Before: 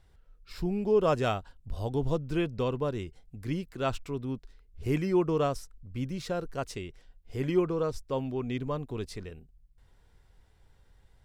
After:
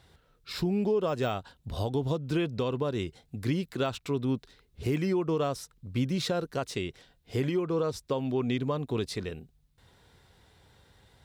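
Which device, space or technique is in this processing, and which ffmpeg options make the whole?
broadcast voice chain: -af "highpass=100,deesser=1,acompressor=threshold=-30dB:ratio=4,equalizer=frequency=3800:width_type=o:width=0.41:gain=6,alimiter=level_in=3.5dB:limit=-24dB:level=0:latency=1:release=369,volume=-3.5dB,volume=8dB"

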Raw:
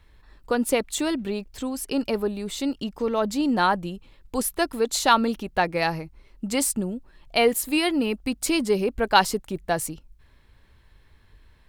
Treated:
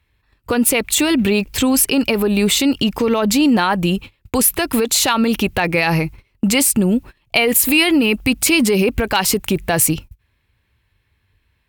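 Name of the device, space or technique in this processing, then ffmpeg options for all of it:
mastering chain: -af "agate=range=-25dB:threshold=-44dB:ratio=16:detection=peak,highpass=45,equalizer=frequency=610:width_type=o:width=0.77:gain=-2,acompressor=threshold=-25dB:ratio=3,asoftclip=type=hard:threshold=-15.5dB,alimiter=level_in=24.5dB:limit=-1dB:release=50:level=0:latency=1,equalizer=frequency=100:width_type=o:width=0.67:gain=7,equalizer=frequency=2500:width_type=o:width=0.67:gain=8,equalizer=frequency=16000:width_type=o:width=0.67:gain=11,volume=-7.5dB"

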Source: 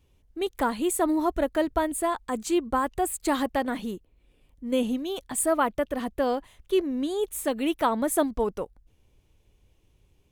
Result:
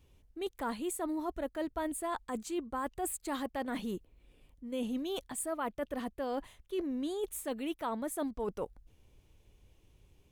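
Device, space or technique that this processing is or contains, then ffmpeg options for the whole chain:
compression on the reversed sound: -af "areverse,acompressor=threshold=-34dB:ratio=5,areverse"

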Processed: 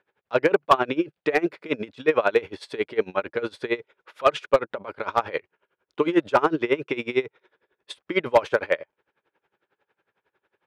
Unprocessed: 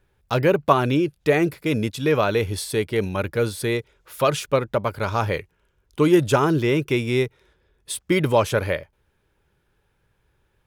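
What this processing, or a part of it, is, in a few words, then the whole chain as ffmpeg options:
helicopter radio: -af "highpass=380,lowpass=2700,aeval=exprs='val(0)*pow(10,-22*(0.5-0.5*cos(2*PI*11*n/s))/20)':channel_layout=same,asoftclip=type=hard:threshold=-14dB,volume=6dB"

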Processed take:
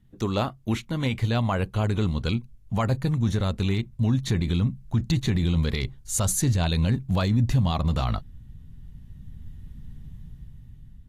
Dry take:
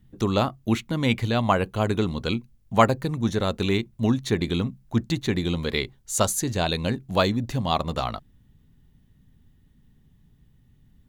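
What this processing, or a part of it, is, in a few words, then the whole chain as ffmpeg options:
low-bitrate web radio: -af "asubboost=boost=4:cutoff=180,dynaudnorm=framelen=420:gausssize=7:maxgain=14.5dB,alimiter=limit=-11dB:level=0:latency=1:release=33,volume=-3dB" -ar 32000 -c:a aac -b:a 48k

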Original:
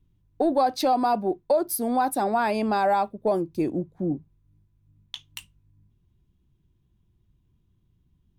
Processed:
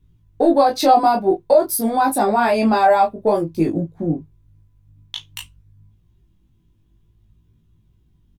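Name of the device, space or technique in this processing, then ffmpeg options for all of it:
double-tracked vocal: -filter_complex "[0:a]asplit=2[link_01][link_02];[link_02]adelay=18,volume=-4dB[link_03];[link_01][link_03]amix=inputs=2:normalize=0,flanger=delay=18.5:depth=3.4:speed=0.53,volume=9dB"

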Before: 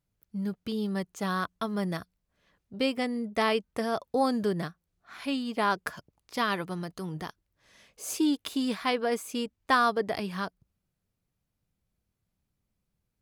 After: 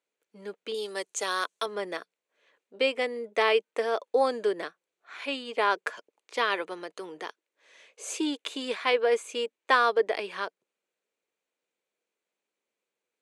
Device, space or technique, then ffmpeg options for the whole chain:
phone speaker on a table: -filter_complex "[0:a]asettb=1/sr,asplit=3[link_01][link_02][link_03];[link_01]atrim=end=0.744[link_04];[link_02]atrim=start=0.74:end=1.66,asetpts=PTS-STARTPTS,afade=type=in:duration=0.004:curve=qsin,afade=type=out:start_time=0.916:duration=0.004:curve=qsin,bass=frequency=250:gain=-7,treble=frequency=4000:gain=14[link_05];[link_03]atrim=start=1.656[link_06];[link_04][link_05]acrossfade=duration=0.004:curve1=hsin:curve2=qsin[link_07];[link_07][link_06]acrossfade=duration=0.004:curve1=qsin:curve2=hsin,highpass=frequency=370:width=0.5412,highpass=frequency=370:width=1.3066,equalizer=frequency=470:width_type=q:width=4:gain=4,equalizer=frequency=730:width_type=q:width=4:gain=-4,equalizer=frequency=1200:width_type=q:width=4:gain=-3,equalizer=frequency=2400:width_type=q:width=4:gain=4,equalizer=frequency=5100:width_type=q:width=4:gain=-9,lowpass=frequency=8300:width=0.5412,lowpass=frequency=8300:width=1.3066,volume=3dB"

